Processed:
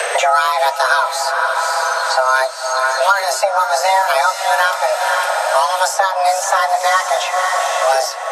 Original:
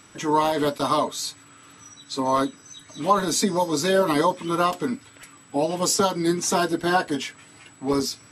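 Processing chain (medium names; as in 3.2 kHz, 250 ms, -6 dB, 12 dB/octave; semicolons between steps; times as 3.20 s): echo that smears into a reverb 518 ms, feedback 55%, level -9.5 dB; frequency shift +380 Hz; three bands compressed up and down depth 100%; trim +6.5 dB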